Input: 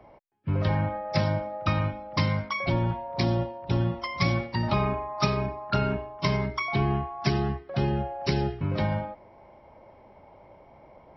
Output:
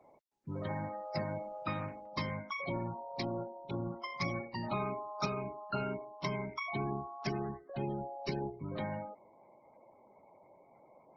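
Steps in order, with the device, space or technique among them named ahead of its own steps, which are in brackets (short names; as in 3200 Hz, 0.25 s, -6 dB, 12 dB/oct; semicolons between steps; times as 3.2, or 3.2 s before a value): 3.06–3.72 dynamic EQ 150 Hz, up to -3 dB, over -39 dBFS, Q 1.2; noise-suppressed video call (HPF 170 Hz 12 dB/oct; spectral gate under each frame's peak -20 dB strong; gain -8.5 dB; Opus 16 kbps 48000 Hz)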